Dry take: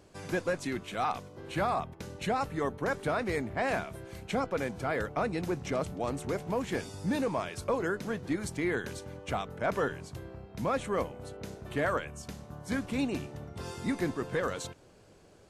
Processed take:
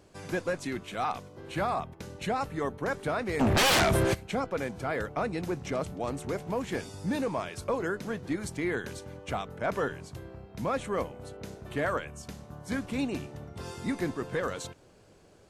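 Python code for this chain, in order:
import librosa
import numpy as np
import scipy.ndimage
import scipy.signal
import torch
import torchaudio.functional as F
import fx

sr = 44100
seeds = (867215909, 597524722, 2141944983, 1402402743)

y = fx.fold_sine(x, sr, drive_db=fx.line((3.39, 14.0), (4.13, 19.0)), ceiling_db=-19.5, at=(3.39, 4.13), fade=0.02)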